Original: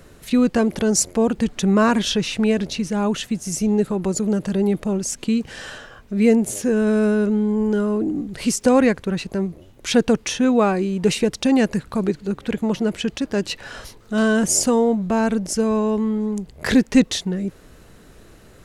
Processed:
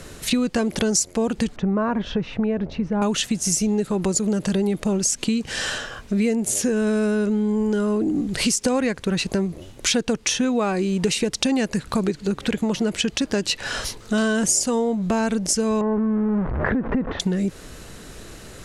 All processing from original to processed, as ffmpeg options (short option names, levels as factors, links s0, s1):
-filter_complex "[0:a]asettb=1/sr,asplit=3[s0][s1][s2];[s0]atrim=end=1.564[s3];[s1]atrim=start=1.56:end=3.02,asetpts=PTS-STARTPTS,afade=t=in:d=0.004:c=qsin,afade=t=out:st=1.456:d=0.004:c=qsin,lowpass=1000,equalizer=f=300:w=0.64:g=-5.5[s4];[s2]atrim=start=3.016[s5];[s3][s4]acrossfade=d=0.004:c1=hsin:c2=qsin[s6];[s6][s5]acrossfade=d=0.004:c1=qsin:c2=hsin,asettb=1/sr,asplit=3[s7][s8][s9];[s7]atrim=end=15.814[s10];[s8]atrim=start=15.81:end=17.2,asetpts=PTS-STARTPTS,afade=t=in:d=0.004:c=qsin,afade=t=out:st=1.386:d=0.004:c=qsin,aeval=exprs='val(0)+0.5*0.0562*sgn(val(0))':c=same,lowpass=f=1500:w=0.5412,lowpass=f=1500:w=1.3066,acompressor=threshold=0.112:ratio=6:attack=3.2:release=140:knee=1:detection=peak[s11];[s9]atrim=start=17.196[s12];[s10][s11]acrossfade=d=0.004:c1=hsin:c2=qsin[s13];[s13][s12]acrossfade=d=0.004:c1=qsin:c2=hsin,lowpass=10000,highshelf=f=3000:g=8.5,acompressor=threshold=0.0562:ratio=6,volume=2"